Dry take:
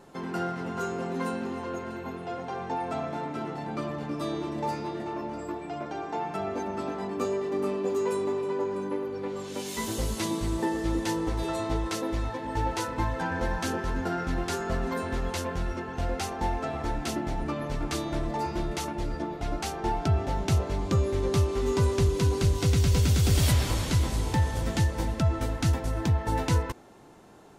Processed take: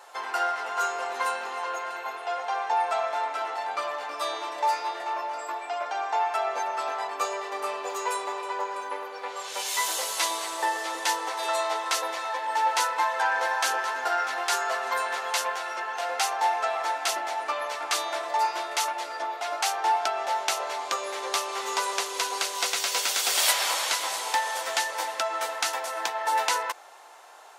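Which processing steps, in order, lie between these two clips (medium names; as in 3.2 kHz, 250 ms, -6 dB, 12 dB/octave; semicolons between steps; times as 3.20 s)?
high-pass 680 Hz 24 dB/octave; trim +8.5 dB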